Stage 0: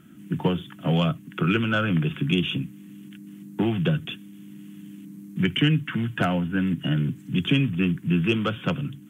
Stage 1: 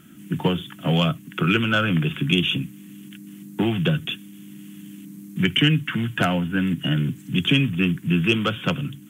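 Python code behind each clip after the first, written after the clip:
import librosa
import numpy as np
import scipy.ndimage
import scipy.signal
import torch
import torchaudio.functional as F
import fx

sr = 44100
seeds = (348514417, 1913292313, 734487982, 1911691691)

y = fx.high_shelf(x, sr, hz=2500.0, db=8.0)
y = y * 10.0 ** (1.5 / 20.0)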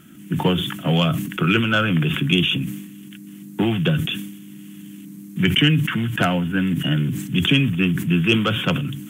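y = fx.sustainer(x, sr, db_per_s=58.0)
y = y * 10.0 ** (1.5 / 20.0)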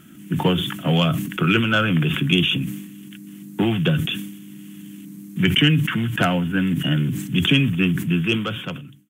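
y = fx.fade_out_tail(x, sr, length_s=1.17)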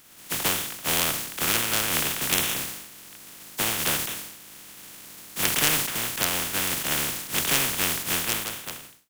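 y = fx.spec_flatten(x, sr, power=0.16)
y = y * 10.0 ** (-6.0 / 20.0)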